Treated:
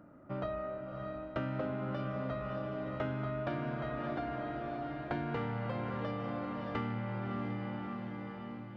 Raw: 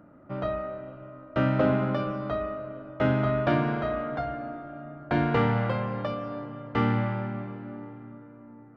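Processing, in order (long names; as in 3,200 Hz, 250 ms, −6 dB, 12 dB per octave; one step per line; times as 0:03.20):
feedback delay with all-pass diffusion 628 ms, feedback 52%, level −8 dB
downward compressor 6 to 1, threshold −30 dBFS, peak gain reduction 11.5 dB
level −3.5 dB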